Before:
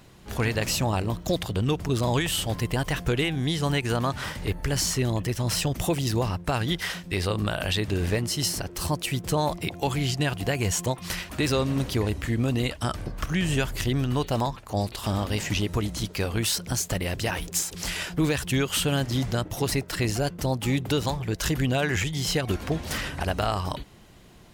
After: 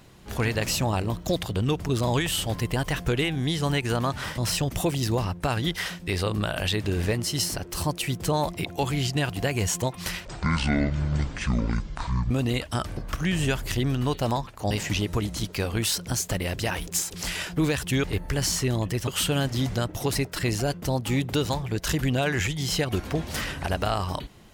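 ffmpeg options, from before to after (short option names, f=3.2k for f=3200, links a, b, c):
-filter_complex "[0:a]asplit=7[a][b][c][d][e][f][g];[a]atrim=end=4.382[h];[b]atrim=start=5.418:end=11.294[i];[c]atrim=start=11.29:end=12.4,asetpts=PTS-STARTPTS,asetrate=23814,aresample=44100[j];[d]atrim=start=12.396:end=14.802[k];[e]atrim=start=15.308:end=18.642[l];[f]atrim=start=4.378:end=5.422[m];[g]atrim=start=18.638[n];[h][i]acrossfade=d=0.004:c1=hsin:c2=hsin[o];[o][j]acrossfade=d=0.004:c1=hsin:c2=hsin[p];[p][k]acrossfade=d=0.004:c1=hsin:c2=hsin[q];[q][l]acrossfade=d=0.004:c1=hsin:c2=hsin[r];[r][m]acrossfade=d=0.004:c1=hsin:c2=hsin[s];[s][n]acrossfade=d=0.004:c1=hsin:c2=hsin"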